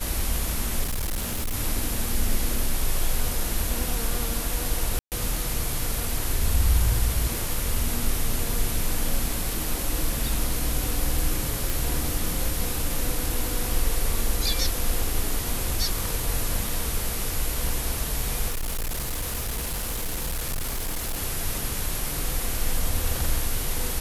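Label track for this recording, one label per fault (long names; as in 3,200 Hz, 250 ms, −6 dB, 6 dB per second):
0.830000	1.550000	clipping −23.5 dBFS
4.990000	5.120000	drop-out 128 ms
11.700000	11.700000	click
18.500000	21.220000	clipping −24.5 dBFS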